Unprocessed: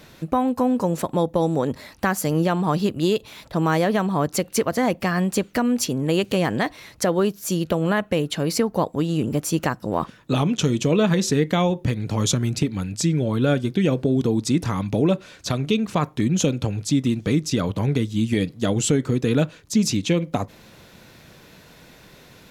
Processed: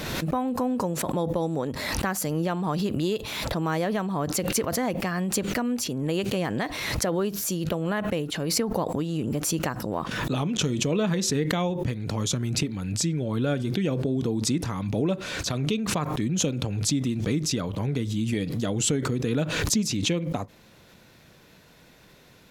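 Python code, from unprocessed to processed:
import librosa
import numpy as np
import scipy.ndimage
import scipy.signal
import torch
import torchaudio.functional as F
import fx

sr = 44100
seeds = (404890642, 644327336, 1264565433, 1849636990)

y = fx.pre_swell(x, sr, db_per_s=31.0)
y = y * librosa.db_to_amplitude(-6.5)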